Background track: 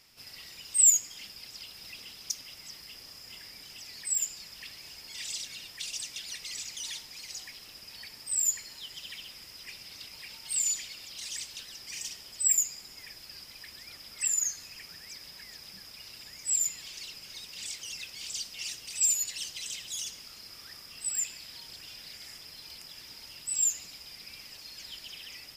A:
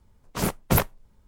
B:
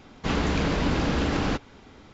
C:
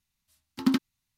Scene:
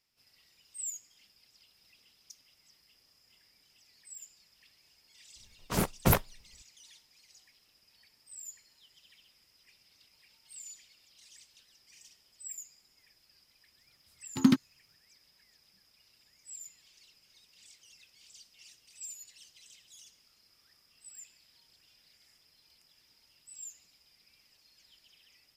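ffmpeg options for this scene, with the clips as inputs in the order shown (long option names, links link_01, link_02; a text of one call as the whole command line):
ffmpeg -i bed.wav -i cue0.wav -i cue1.wav -i cue2.wav -filter_complex "[0:a]volume=-18.5dB[link_01];[1:a]agate=range=-33dB:threshold=-56dB:ratio=3:release=100:detection=peak[link_02];[3:a]equalizer=frequency=130:width=1.5:gain=12[link_03];[link_02]atrim=end=1.27,asetpts=PTS-STARTPTS,volume=-3.5dB,afade=type=in:duration=0.004:curve=hsin,afade=type=out:start_time=1.266:duration=0.004:curve=hsin,adelay=5350[link_04];[link_03]atrim=end=1.17,asetpts=PTS-STARTPTS,volume=-1.5dB,afade=type=in:duration=0.004:curve=hsin,afade=type=out:start_time=1.166:duration=0.004:curve=hsin,adelay=13780[link_05];[link_01][link_04][link_05]amix=inputs=3:normalize=0" out.wav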